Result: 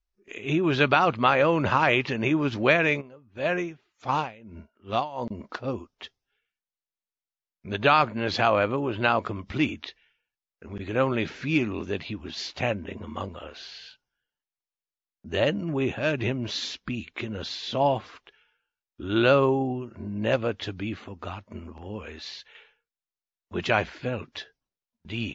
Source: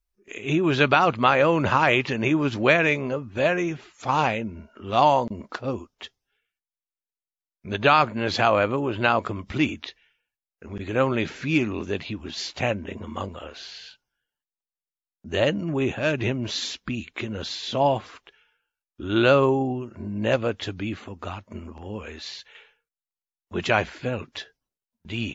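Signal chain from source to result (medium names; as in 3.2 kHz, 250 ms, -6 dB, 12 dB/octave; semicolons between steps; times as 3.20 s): low-pass 6.2 kHz 24 dB/octave; 3.00–5.22 s: logarithmic tremolo 1.1 Hz -> 3.5 Hz, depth 20 dB; trim -2 dB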